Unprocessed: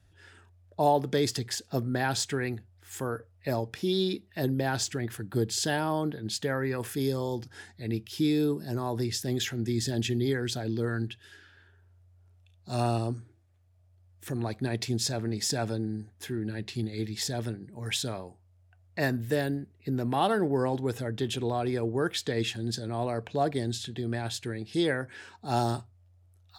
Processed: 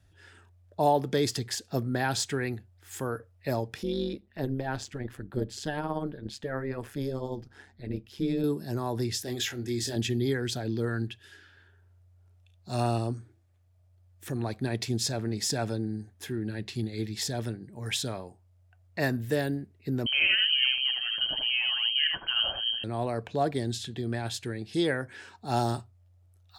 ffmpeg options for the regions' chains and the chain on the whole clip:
-filter_complex "[0:a]asettb=1/sr,asplit=3[a][b][c];[a]atrim=end=3.834[d];[b]atrim=start=3.83:end=8.44,asetpts=PTS-STARTPTS,afade=t=in:d=0.004:c=qsin,afade=t=out:st=4.606:d=0.004:c=qsin,highshelf=f=3.8k:g=-11.5,tremolo=f=140:d=0.71[e];[c]atrim=start=8.436[f];[d][e]acrossfade=d=0.004:c1=hsin:c2=qsin[g];[g][f]acrossfade=d=0.004:c1=qsin:c2=hsin,asettb=1/sr,asplit=3[h][i][j];[h]atrim=end=9.244[k];[i]atrim=start=9.24:end=9.96,asetpts=PTS-STARTPTS,afade=t=in:d=0.004:c=qsin,afade=t=out:st=0.716:d=0.004:c=qsin,equalizer=f=160:t=o:w=1:g=-14,asplit=2[l][m];[m]adelay=25,volume=-6dB[n];[l][n]amix=inputs=2:normalize=0,atrim=end_sample=31752[o];[j]atrim=start=9.956[p];[k][o]acrossfade=d=0.004:c1=hsin:c2=qsin[q];[q][p]acrossfade=d=0.004:c1=qsin:c2=hsin,asettb=1/sr,asplit=3[r][s][t];[r]atrim=end=20.064[u];[s]atrim=start=20.06:end=22.84,asetpts=PTS-STARTPTS,afade=t=in:d=0.004:c=qsin,afade=t=out:st=2.776:d=0.004:c=qsin,aecho=1:1:78:0.631,atrim=end_sample=122598,lowpass=f=2.8k:t=q:w=0.5098,lowpass=f=2.8k:t=q:w=0.6013,lowpass=f=2.8k:t=q:w=0.9,lowpass=f=2.8k:t=q:w=2.563,afreqshift=-3300[v];[t]atrim=start=22.836[w];[u][v]acrossfade=d=0.004:c1=hsin:c2=qsin[x];[x][w]acrossfade=d=0.004:c1=qsin:c2=hsin"

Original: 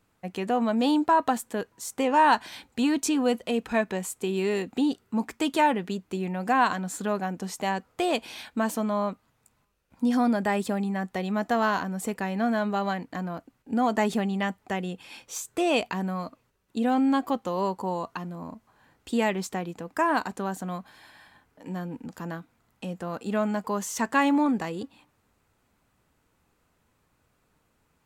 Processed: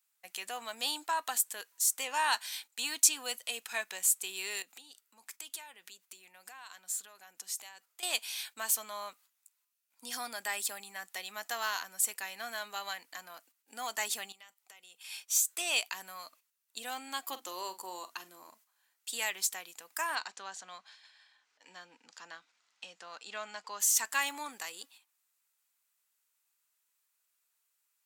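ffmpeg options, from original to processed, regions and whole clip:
-filter_complex "[0:a]asettb=1/sr,asplit=3[a][b][c];[a]atrim=end=4.624[d];[b]atrim=start=4.62:end=8.03,asetpts=PTS-STARTPTS,afade=t=in:d=0.004:c=qsin,afade=t=out:st=3.406:d=0.004:c=qsin,acompressor=threshold=-40dB:ratio=4:attack=3.2:release=140:knee=1:detection=peak,aeval=exprs='clip(val(0),-1,0.0398)':c=same[e];[c]atrim=start=8.026[f];[d][e]acrossfade=d=0.004:c1=hsin:c2=qsin[g];[g][f]acrossfade=d=0.004:c1=qsin:c2=hsin,asettb=1/sr,asplit=3[h][i][j];[h]atrim=end=14.324[k];[i]atrim=start=14.32:end=14.99,asetpts=PTS-STARTPTS,afade=t=in:d=0.004:c=qsin,afade=t=out:st=0.666:d=0.004:c=qsin,lowshelf=f=210:g=-7,bandreject=f=1.7k:w=7.3,acompressor=threshold=-42dB:ratio=12:attack=3.2:release=140:knee=1:detection=peak[l];[j]atrim=start=14.986[m];[k][l]acrossfade=d=0.004:c1=hsin:c2=qsin[n];[n][m]acrossfade=d=0.004:c1=qsin:c2=hsin,asettb=1/sr,asplit=3[o][p][q];[o]atrim=end=17.284[r];[p]atrim=start=17.28:end=18.5,asetpts=PTS-STARTPTS,afade=t=in:d=0.004:c=qsin,afade=t=out:st=1.216:d=0.004:c=qsin,equalizer=f=330:t=o:w=0.57:g=11.5,bandreject=f=50:t=h:w=6,bandreject=f=100:t=h:w=6,bandreject=f=150:t=h:w=6,bandreject=f=200:t=h:w=6,bandreject=f=250:t=h:w=6,bandreject=f=300:t=h:w=6,asplit=2[s][t];[t]adelay=45,volume=-13dB[u];[s][u]amix=inputs=2:normalize=0,atrim=end_sample=53802[v];[q]atrim=start=18.496[w];[r][v]acrossfade=d=0.004:c1=hsin:c2=qsin[x];[x][w]acrossfade=d=0.004:c1=qsin:c2=hsin,asettb=1/sr,asplit=3[y][z][aa];[y]atrim=end=20.154[ab];[z]atrim=start=20.15:end=23.8,asetpts=PTS-STARTPTS,afade=t=in:d=0.004:c=qsin,afade=t=out:st=3.646:d=0.004:c=qsin,lowpass=f=6k:w=0.5412,lowpass=f=6k:w=1.3066,acompressor=mode=upward:threshold=-45dB:ratio=2.5:attack=3.2:release=140:knee=2.83:detection=peak[ac];[aa]atrim=start=23.796[ad];[ab][ac]acrossfade=d=0.004:c1=hsin:c2=qsin[ae];[ae][ad]acrossfade=d=0.004:c1=qsin:c2=hsin,agate=range=-9dB:threshold=-49dB:ratio=16:detection=peak,highpass=f=770:p=1,aderivative,volume=8dB"

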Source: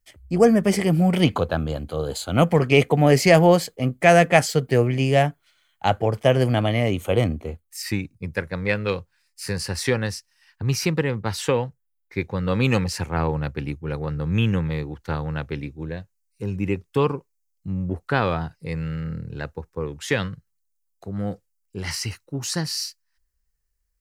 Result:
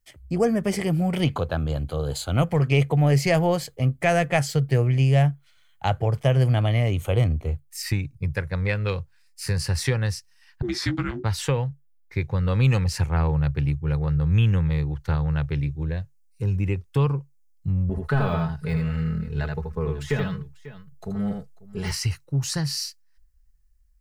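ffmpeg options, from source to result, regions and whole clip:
-filter_complex "[0:a]asettb=1/sr,asplit=3[a][b][c];[a]atrim=end=10.624[d];[b]atrim=start=10.62:end=11.24,asetpts=PTS-STARTPTS,afade=t=in:d=0.004:c=qsin,afade=t=out:st=0.616:d=0.004:c=qsin,afreqshift=-470,highpass=160,lowpass=7.4k,asplit=2[e][f];[f]adelay=16,volume=-7dB[g];[e][g]amix=inputs=2:normalize=0,atrim=end_sample=27342[h];[c]atrim=start=11.236[i];[d][h]acrossfade=d=0.004:c1=hsin:c2=qsin[j];[j][i]acrossfade=d=0.004:c1=qsin:c2=hsin,asettb=1/sr,asplit=3[k][l][m];[k]atrim=end=17.894[n];[l]atrim=start=17.89:end=21.92,asetpts=PTS-STARTPTS,afade=t=in:d=0.004:c=qsin,afade=t=out:st=4.026:d=0.004:c=qsin,deesser=1,aecho=1:1:4.7:0.89,atrim=end_sample=177723,aecho=1:1:79|543:0.596|0.1,atrim=end_sample=177723[o];[m]atrim=start=21.916[p];[n][o]acrossfade=d=0.004:c1=hsin:c2=qsin[q];[q][p]acrossfade=d=0.004:c1=qsin:c2=hsin,equalizer=f=140:t=o:w=0.25:g=9.5,acompressor=threshold=-27dB:ratio=1.5,asubboost=boost=5.5:cutoff=91"

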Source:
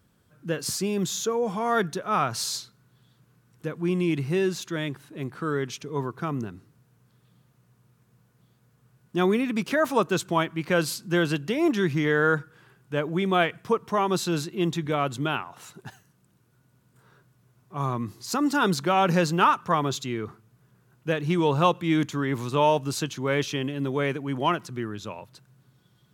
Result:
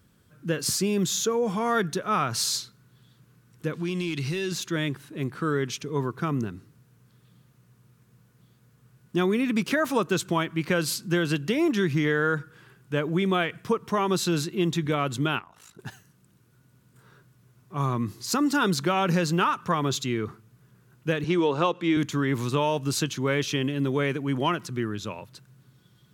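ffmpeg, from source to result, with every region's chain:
-filter_complex "[0:a]asettb=1/sr,asplit=3[a][b][c];[a]atrim=end=3.734[d];[b]atrim=start=3.73:end=4.52,asetpts=PTS-STARTPTS,afade=t=in:d=0.004:c=qsin,afade=t=out:st=0.786:d=0.004:c=qsin,equalizer=f=4.4k:t=o:w=1.8:g=13,acompressor=threshold=-29dB:ratio=4:attack=3.2:release=140:knee=1:detection=peak,asoftclip=type=hard:threshold=-24.5dB[e];[c]atrim=start=4.516[f];[d][e]acrossfade=d=0.004:c1=hsin:c2=qsin[g];[g][f]acrossfade=d=0.004:c1=qsin:c2=hsin,asettb=1/sr,asplit=3[h][i][j];[h]atrim=end=15.394[k];[i]atrim=start=15.39:end=15.79,asetpts=PTS-STARTPTS,afade=t=in:d=0.004:c=qsin,afade=t=out:st=0.396:d=0.004:c=qsin,agate=range=-6dB:threshold=-41dB:ratio=16:release=100:detection=peak,acompressor=threshold=-46dB:ratio=2:attack=3.2:release=140:knee=1:detection=peak,aeval=exprs='val(0)*sin(2*PI*27*n/s)':c=same[l];[j]atrim=start=15.786[m];[k][l]acrossfade=d=0.004:c1=hsin:c2=qsin[n];[n][m]acrossfade=d=0.004:c1=qsin:c2=hsin,asettb=1/sr,asplit=3[o][p][q];[o]atrim=end=21.244[r];[p]atrim=start=21.24:end=21.97,asetpts=PTS-STARTPTS,afade=t=in:d=0.004:c=qsin,afade=t=out:st=0.726:d=0.004:c=qsin,highpass=350,lowpass=6.5k,lowshelf=f=480:g=7.5[s];[q]atrim=start=21.966[t];[r][s]acrossfade=d=0.004:c1=hsin:c2=qsin[u];[u][t]acrossfade=d=0.004:c1=qsin:c2=hsin,equalizer=f=750:t=o:w=1:g=-5,acompressor=threshold=-23dB:ratio=6,volume=3.5dB"

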